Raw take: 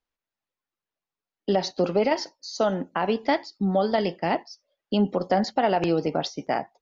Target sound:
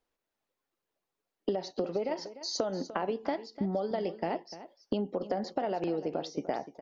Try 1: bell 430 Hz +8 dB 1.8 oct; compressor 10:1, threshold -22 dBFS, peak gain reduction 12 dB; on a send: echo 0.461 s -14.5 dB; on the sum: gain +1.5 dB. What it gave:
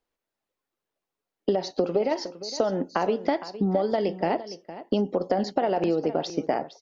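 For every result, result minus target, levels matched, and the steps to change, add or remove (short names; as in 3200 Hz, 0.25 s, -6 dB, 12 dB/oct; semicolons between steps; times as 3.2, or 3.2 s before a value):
echo 0.163 s late; compressor: peak gain reduction -7.5 dB
change: echo 0.298 s -14.5 dB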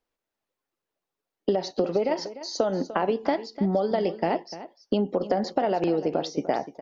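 compressor: peak gain reduction -7.5 dB
change: compressor 10:1, threshold -30.5 dBFS, peak gain reduction 19.5 dB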